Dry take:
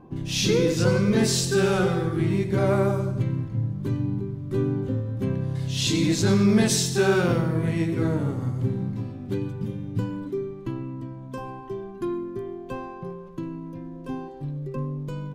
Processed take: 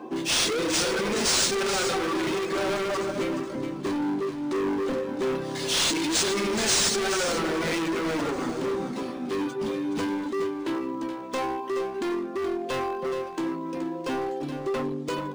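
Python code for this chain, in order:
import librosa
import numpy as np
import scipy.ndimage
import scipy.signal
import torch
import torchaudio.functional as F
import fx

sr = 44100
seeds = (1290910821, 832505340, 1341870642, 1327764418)

p1 = scipy.signal.sosfilt(scipy.signal.butter(4, 280.0, 'highpass', fs=sr, output='sos'), x)
p2 = fx.doubler(p1, sr, ms=13.0, db=-8.5)
p3 = fx.dereverb_blind(p2, sr, rt60_s=0.53)
p4 = fx.over_compress(p3, sr, threshold_db=-32.0, ratio=-1.0)
p5 = p3 + F.gain(torch.from_numpy(p4), 0.5).numpy()
p6 = np.clip(p5, -10.0 ** (-29.0 / 20.0), 10.0 ** (-29.0 / 20.0))
p7 = fx.high_shelf(p6, sr, hz=4500.0, db=11.0)
p8 = p7 + 10.0 ** (-9.0 / 20.0) * np.pad(p7, (int(424 * sr / 1000.0), 0))[:len(p7)]
p9 = np.interp(np.arange(len(p8)), np.arange(len(p8))[::3], p8[::3])
y = F.gain(torch.from_numpy(p9), 3.0).numpy()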